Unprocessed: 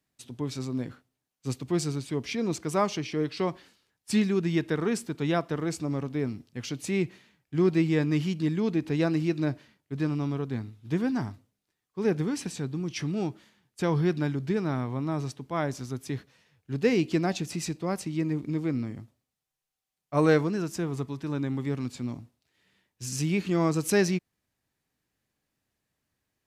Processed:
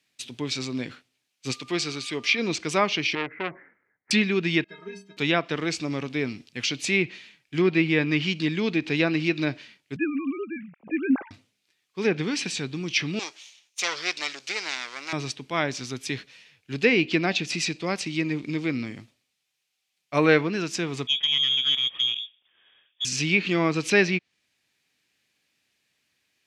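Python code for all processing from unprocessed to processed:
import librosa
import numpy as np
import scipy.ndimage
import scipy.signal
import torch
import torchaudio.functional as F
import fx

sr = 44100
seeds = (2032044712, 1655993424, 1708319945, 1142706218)

y = fx.low_shelf(x, sr, hz=200.0, db=-10.0, at=(1.51, 2.38), fade=0.02)
y = fx.dmg_tone(y, sr, hz=1200.0, level_db=-54.0, at=(1.51, 2.38), fade=0.02)
y = fx.chain(y, sr, fx.cheby_ripple(hz=2100.0, ripple_db=3),
    fx.transformer_sat(knee_hz=1200.0), at=(3.15, 4.11))
y = fx.chain(y, sr, fx.lowpass(hz=1600.0, slope=6),
    fx.stiff_resonator(f0_hz=190.0, decay_s=0.43, stiffness=0.03), at=(4.64, 5.17))
y = fx.chain(y, sr, fx.sine_speech(),
    fx.steep_lowpass(hz=2500.0, slope=48), at=(9.96, 11.31))
y = fx.chain(y, sr, fx.lower_of_two(delay_ms=0.32),
    fx.highpass(hz=820.0, slope=12),
    fx.band_shelf(hz=6000.0, db=8.5, octaves=1.1), at=(13.19, 15.13))
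y = fx.chain(y, sr, fx.freq_invert(carrier_hz=3500),
    fx.tube_stage(drive_db=23.0, bias=0.55), at=(21.07, 23.05))
y = fx.weighting(y, sr, curve='D')
y = fx.env_lowpass_down(y, sr, base_hz=2700.0, full_db=-20.5)
y = fx.peak_eq(y, sr, hz=2400.0, db=4.5, octaves=0.28)
y = F.gain(torch.from_numpy(y), 2.5).numpy()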